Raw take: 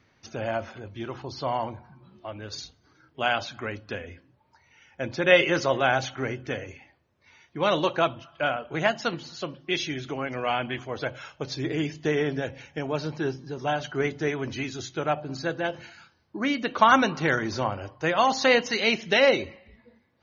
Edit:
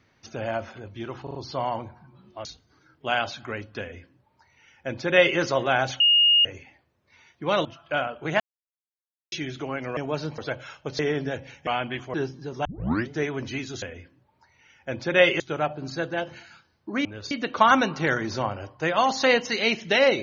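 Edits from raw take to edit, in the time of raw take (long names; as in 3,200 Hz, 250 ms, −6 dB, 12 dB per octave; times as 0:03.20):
0:01.23: stutter 0.04 s, 4 plays
0:02.33–0:02.59: move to 0:16.52
0:03.94–0:05.52: duplicate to 0:14.87
0:06.14–0:06.59: beep over 2,850 Hz −14.5 dBFS
0:07.79–0:08.14: remove
0:08.89–0:09.81: silence
0:10.46–0:10.93: swap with 0:12.78–0:13.19
0:11.54–0:12.10: remove
0:13.70: tape start 0.45 s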